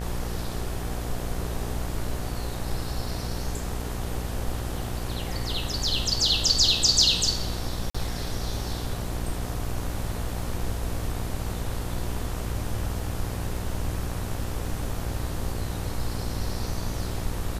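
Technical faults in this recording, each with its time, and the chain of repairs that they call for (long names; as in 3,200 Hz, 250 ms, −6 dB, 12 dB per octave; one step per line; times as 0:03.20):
mains buzz 60 Hz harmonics 32 −33 dBFS
0:07.90–0:07.95: drop-out 45 ms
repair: hum removal 60 Hz, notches 32
repair the gap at 0:07.90, 45 ms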